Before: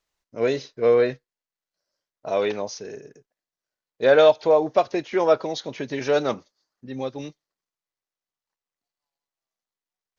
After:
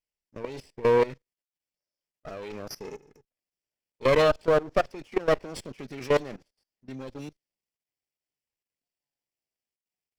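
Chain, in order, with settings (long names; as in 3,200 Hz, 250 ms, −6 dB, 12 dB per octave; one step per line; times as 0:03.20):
lower of the sound and its delayed copy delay 0.39 ms
output level in coarse steps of 19 dB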